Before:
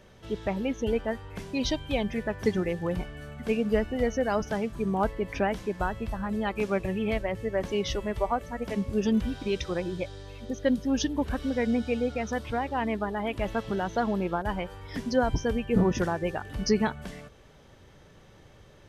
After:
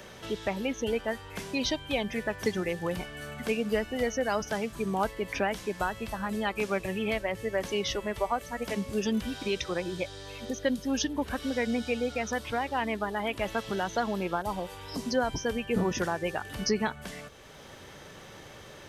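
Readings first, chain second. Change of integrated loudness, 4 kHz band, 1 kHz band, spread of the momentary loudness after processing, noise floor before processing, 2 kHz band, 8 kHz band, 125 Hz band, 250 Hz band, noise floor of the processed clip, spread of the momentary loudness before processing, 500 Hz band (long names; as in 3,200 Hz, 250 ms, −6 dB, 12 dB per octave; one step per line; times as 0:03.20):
−2.0 dB, +2.5 dB, −0.5 dB, 9 LU, −54 dBFS, +2.0 dB, +3.5 dB, −5.5 dB, −4.0 dB, −48 dBFS, 8 LU, −2.0 dB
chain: healed spectral selection 0:14.47–0:15.05, 1,300–3,800 Hz after
spectral tilt +2 dB per octave
multiband upward and downward compressor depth 40%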